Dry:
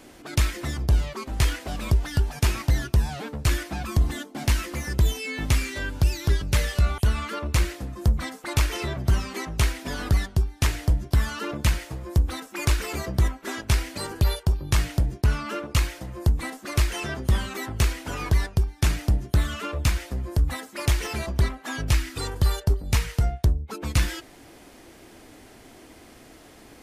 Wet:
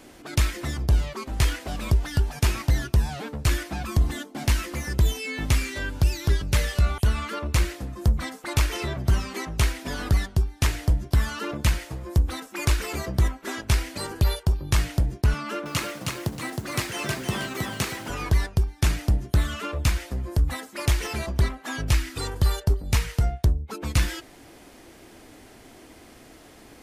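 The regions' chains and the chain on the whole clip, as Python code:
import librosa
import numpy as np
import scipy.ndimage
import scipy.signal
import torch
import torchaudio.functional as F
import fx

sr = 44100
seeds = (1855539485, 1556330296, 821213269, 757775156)

y = fx.chain(x, sr, fx.highpass(hz=120.0, slope=24),
    fx.echo_crushed(ms=316, feedback_pct=35, bits=8, wet_db=-3), at=(15.34, 18.09))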